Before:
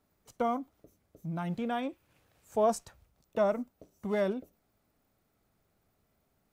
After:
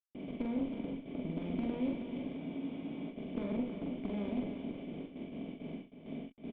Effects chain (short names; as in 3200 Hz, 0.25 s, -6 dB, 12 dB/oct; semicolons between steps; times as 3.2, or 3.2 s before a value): per-bin compression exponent 0.2; HPF 53 Hz 6 dB/oct; gate with hold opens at -20 dBFS; sample gate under -36.5 dBFS; vocal tract filter i; added harmonics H 4 -17 dB, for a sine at -24 dBFS; doubler 44 ms -3 dB; echo 0.318 s -9 dB; spectral freeze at 2.4, 0.70 s; gain -1 dB